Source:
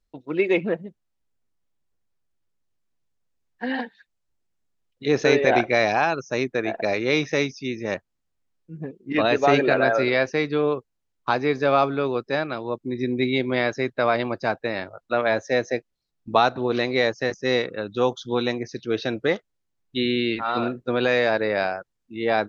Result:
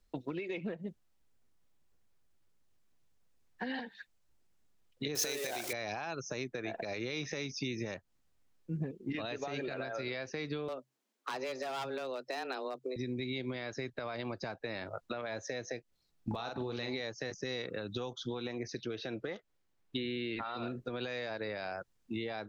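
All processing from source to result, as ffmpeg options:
-filter_complex "[0:a]asettb=1/sr,asplit=3[s0][s1][s2];[s0]atrim=end=5.154[s3];[s1]atrim=start=5.15:end=5.73,asetpts=PTS-STARTPTS,afade=t=in:d=0.004:c=qsin,afade=t=out:st=0.576:d=0.004:c=qsin,aeval=exprs='val(0)+0.5*0.0355*sgn(val(0))':c=same,bass=f=250:g=-10,treble=f=4000:g=13[s4];[s2]atrim=start=5.726[s5];[s3][s4]acrossfade=d=0.004:c1=hsin:c2=qsin[s6];[s6][s5]acrossfade=d=0.004:c1=qsin:c2=hsin,asettb=1/sr,asplit=3[s7][s8][s9];[s7]atrim=end=10.684[s10];[s8]atrim=start=10.68:end=12.96,asetpts=PTS-STARTPTS,afade=t=in:d=0.004:c=qsin,afade=t=out:st=2.276:d=0.004:c=qsin,highpass=f=89:w=0.5412,highpass=f=89:w=1.3066,volume=7.5,asoftclip=hard,volume=0.133,afreqshift=130[s11];[s9]atrim=start=12.956[s12];[s10][s11]acrossfade=d=0.004:c1=hsin:c2=qsin[s13];[s13][s12]acrossfade=d=0.004:c1=qsin:c2=hsin,asettb=1/sr,asplit=3[s14][s15][s16];[s14]atrim=end=16.314[s17];[s15]atrim=start=16.31:end=17,asetpts=PTS-STARTPTS,afade=t=in:d=0.004:c=qsin,afade=t=out:st=0.686:d=0.004:c=qsin,aeval=exprs='val(0)+0.01*sin(2*PI*850*n/s)':c=same,acompressor=mode=upward:threshold=0.0562:ratio=2.5:attack=3.2:release=140:knee=2.83:detection=peak,asplit=2[s18][s19];[s19]adelay=43,volume=0.447[s20];[s18][s20]amix=inputs=2:normalize=0,atrim=end_sample=30429[s21];[s16]atrim=start=16.996[s22];[s17][s21]acrossfade=d=0.004:c1=hsin:c2=qsin[s23];[s23][s22]acrossfade=d=0.004:c1=qsin:c2=hsin,asettb=1/sr,asplit=3[s24][s25][s26];[s24]atrim=end=18.134[s27];[s25]atrim=start=18.13:end=20.57,asetpts=PTS-STARTPTS,afade=t=in:d=0.004:c=qsin,afade=t=out:st=2.436:d=0.004:c=qsin,acrossover=split=2500[s28][s29];[s29]acompressor=threshold=0.0178:ratio=4:attack=1:release=60[s30];[s28][s30]amix=inputs=2:normalize=0,bass=f=250:g=-4,treble=f=4000:g=-5[s31];[s26]atrim=start=20.566[s32];[s27][s31]acrossfade=d=0.004:c1=hsin:c2=qsin[s33];[s33][s32]acrossfade=d=0.004:c1=qsin:c2=hsin,acompressor=threshold=0.0447:ratio=6,alimiter=level_in=1.26:limit=0.0631:level=0:latency=1:release=216,volume=0.794,acrossover=split=130|3000[s34][s35][s36];[s35]acompressor=threshold=0.00891:ratio=6[s37];[s34][s37][s36]amix=inputs=3:normalize=0,volume=1.68"

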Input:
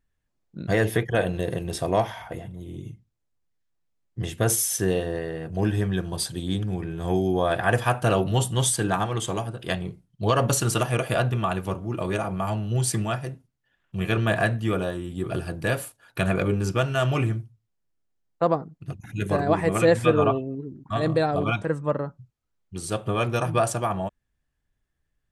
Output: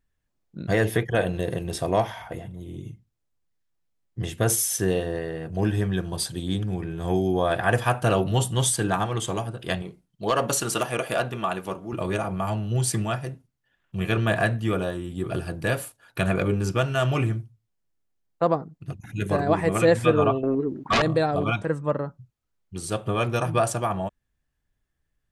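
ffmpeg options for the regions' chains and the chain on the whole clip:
-filter_complex "[0:a]asettb=1/sr,asplit=3[s0][s1][s2];[s0]atrim=end=9.824[s3];[s1]atrim=start=9.82:end=11.93,asetpts=PTS-STARTPTS,afade=t=in:d=0.004:c=qsin,afade=t=out:st=2.106:d=0.004:c=qsin,equalizer=f=92:w=1:g=-14.5,asoftclip=type=hard:threshold=0.2[s4];[s2]atrim=start=11.926[s5];[s3][s4]acrossfade=d=0.004:c1=hsin:c2=qsin[s6];[s6][s5]acrossfade=d=0.004:c1=qsin:c2=hsin,asettb=1/sr,asplit=3[s7][s8][s9];[s7]atrim=end=20.434[s10];[s8]atrim=start=20.43:end=21.02,asetpts=PTS-STARTPTS,afade=t=in:d=0.004:c=qsin,afade=t=out:st=0.586:d=0.004:c=qsin,bass=f=250:g=-15,treble=f=4000:g=-10,aeval=exprs='0.15*sin(PI/2*3.98*val(0)/0.15)':c=same[s11];[s9]atrim=start=21.016[s12];[s10][s11]acrossfade=d=0.004:c1=hsin:c2=qsin[s13];[s13][s12]acrossfade=d=0.004:c1=qsin:c2=hsin"

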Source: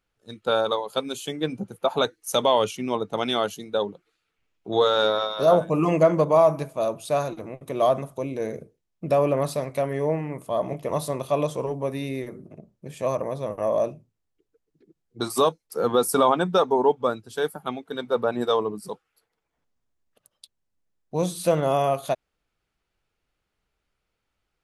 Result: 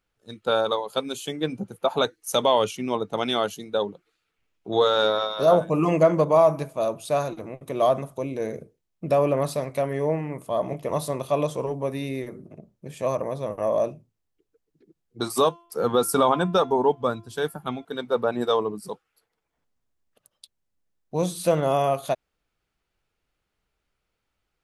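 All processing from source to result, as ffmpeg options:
-filter_complex "[0:a]asettb=1/sr,asplit=3[s0][s1][s2];[s0]atrim=end=15.344[s3];[s1]atrim=start=15.34:end=17.85,asetpts=PTS-STARTPTS,afade=t=in:d=0.004:c=qsin,afade=t=out:st=2.506:d=0.004:c=qsin,bandreject=f=342.4:t=h:w=4,bandreject=f=684.8:t=h:w=4,bandreject=f=1027.2:t=h:w=4,bandreject=f=1369.6:t=h:w=4,bandreject=f=1712:t=h:w=4,bandreject=f=2054.4:t=h:w=4,bandreject=f=2396.8:t=h:w=4,bandreject=f=2739.2:t=h:w=4,bandreject=f=3081.6:t=h:w=4,bandreject=f=3424:t=h:w=4,asubboost=boost=3:cutoff=230[s4];[s2]atrim=start=17.846[s5];[s3][s4]acrossfade=d=0.004:c1=hsin:c2=qsin[s6];[s6][s5]acrossfade=d=0.004:c1=qsin:c2=hsin"

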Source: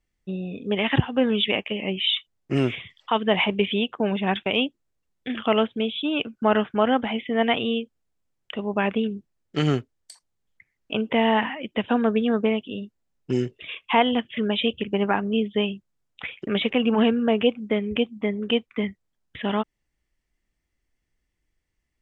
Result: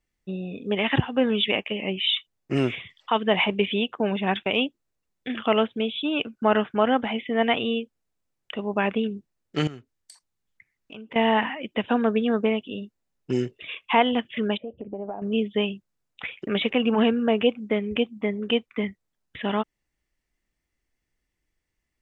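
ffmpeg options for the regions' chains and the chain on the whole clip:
-filter_complex "[0:a]asettb=1/sr,asplit=3[s0][s1][s2];[s0]atrim=end=9.674[s3];[s1]atrim=start=9.67:end=11.16,asetpts=PTS-STARTPTS,afade=t=in:d=0.004:c=qsin,afade=t=out:st=1.486:d=0.004:c=qsin,equalizer=f=560:w=1.1:g=-4,acompressor=threshold=0.00708:ratio=2.5:attack=3.2:release=140:knee=1:detection=peak[s4];[s2]atrim=start=11.156[s5];[s3][s4]acrossfade=d=0.004:c1=hsin:c2=qsin[s6];[s6][s5]acrossfade=d=0.004:c1=qsin:c2=hsin,asettb=1/sr,asplit=3[s7][s8][s9];[s7]atrim=end=14.574[s10];[s8]atrim=start=14.57:end=15.22,asetpts=PTS-STARTPTS,afade=t=in:d=0.004:c=qsin,afade=t=out:st=0.646:d=0.004:c=qsin,acompressor=threshold=0.0282:ratio=20:attack=3.2:release=140:knee=1:detection=peak,lowpass=f=670:t=q:w=3.5[s11];[s9]atrim=start=15.216[s12];[s10][s11]acrossfade=d=0.004:c1=hsin:c2=qsin[s13];[s13][s12]acrossfade=d=0.004:c1=qsin:c2=hsin,lowshelf=f=160:g=-4,bandreject=f=3200:w=27"

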